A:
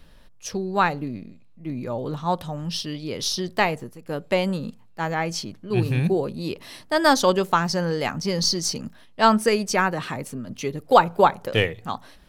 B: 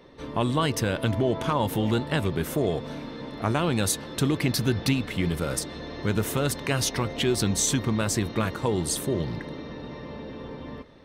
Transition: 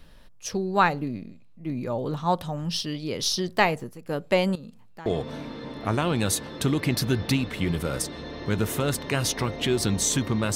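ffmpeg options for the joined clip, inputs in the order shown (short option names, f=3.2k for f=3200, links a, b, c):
-filter_complex "[0:a]asettb=1/sr,asplit=3[a][b][c];[a]atrim=end=4.554[d];[b]atrim=start=4.55:end=5.06,asetpts=PTS-STARTPTS,afade=t=in:d=0.004:c=qsin,afade=t=out:st=0.506:d=0.004:c=qsin,acompressor=threshold=-39dB:ratio=5:attack=3.2:release=140:knee=1:detection=peak[e];[c]atrim=start=5.056[f];[d][e]acrossfade=d=0.004:c1=hsin:c2=qsin[g];[g][f]acrossfade=d=0.004:c1=qsin:c2=hsin,apad=whole_dur=10.55,atrim=end=10.55,atrim=end=5.062[h];[1:a]atrim=start=2.628:end=8.12[i];[h][i]acrossfade=d=0.004:c1=hsin:c2=hsin"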